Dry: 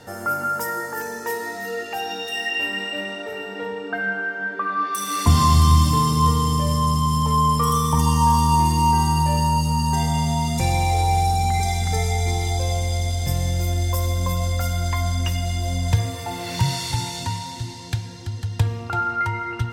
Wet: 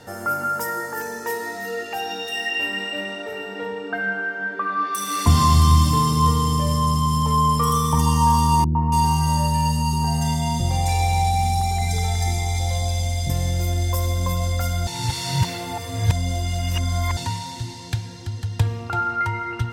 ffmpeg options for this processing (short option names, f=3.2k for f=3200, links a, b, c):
-filter_complex "[0:a]asettb=1/sr,asplit=3[a][b][c];[a]atrim=end=8.644[d];[b]atrim=start=8.64:end=13.3,asetpts=PTS-STARTPTS,afade=t=in:d=0.004:c=qsin,afade=t=out:st=4.656:d=0.004:c=qsin,acrossover=split=420|1500[e][f][g];[f]adelay=110[h];[g]adelay=280[i];[e][h][i]amix=inputs=3:normalize=0,atrim=end_sample=205506[j];[c]atrim=start=13.296[k];[d][j]acrossfade=d=0.004:c1=hsin:c2=qsin[l];[l][k]acrossfade=d=0.004:c1=qsin:c2=hsin,asplit=3[m][n][o];[m]atrim=end=14.872[p];[n]atrim=start=14.868:end=17.172,asetpts=PTS-STARTPTS,areverse[q];[o]atrim=start=17.168[r];[p][q]acrossfade=d=0.004:c1=hsin:c2=hsin[s];[s][r]acrossfade=d=0.004:c1=hsin:c2=hsin"